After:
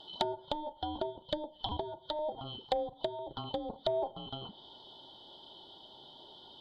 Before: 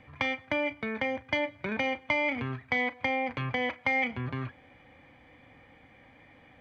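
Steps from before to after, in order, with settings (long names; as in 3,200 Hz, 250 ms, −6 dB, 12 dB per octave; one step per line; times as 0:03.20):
band-splitting scrambler in four parts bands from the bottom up 2413
0:01.19–0:03.87: auto-filter notch saw down 4 Hz 340–3,000 Hz
gain into a clipping stage and back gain 21.5 dB
treble cut that deepens with the level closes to 540 Hz, closed at −27.5 dBFS
level +2.5 dB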